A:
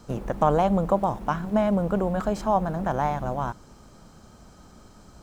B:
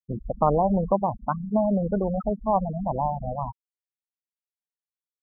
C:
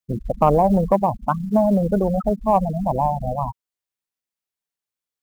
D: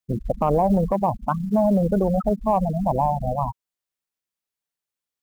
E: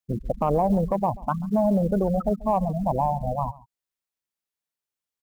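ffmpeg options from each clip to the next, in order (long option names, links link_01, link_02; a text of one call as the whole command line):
ffmpeg -i in.wav -af "afftfilt=real='re*gte(hypot(re,im),0.141)':imag='im*gte(hypot(re,im),0.141)':win_size=1024:overlap=0.75" out.wav
ffmpeg -i in.wav -af "acrusher=bits=9:mode=log:mix=0:aa=0.000001,acontrast=44" out.wav
ffmpeg -i in.wav -af "alimiter=limit=-11.5dB:level=0:latency=1:release=39" out.wav
ffmpeg -i in.wav -af "aecho=1:1:137:0.0841,volume=-2.5dB" out.wav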